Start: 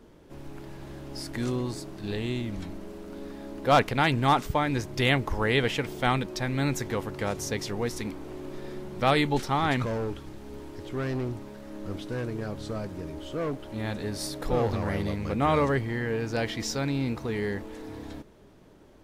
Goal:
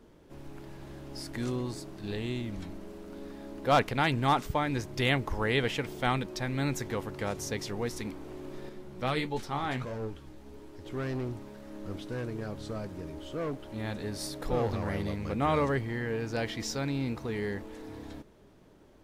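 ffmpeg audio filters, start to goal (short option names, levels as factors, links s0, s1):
-filter_complex "[0:a]asettb=1/sr,asplit=3[s0][s1][s2];[s0]atrim=end=8.694[s3];[s1]atrim=start=8.69:end=10.86,asetpts=PTS-STARTPTS,afade=t=in:d=0.004:c=qsin,afade=t=out:st=2.166:d=0.004:c=qsin,flanger=delay=9.1:depth=7.3:regen=48:speed=1.5:shape=sinusoidal[s4];[s2]atrim=start=10.856[s5];[s3][s4]acrossfade=d=0.004:c1=hsin:c2=qsin[s6];[s6][s5]acrossfade=d=0.004:c1=qsin:c2=hsin,volume=0.668"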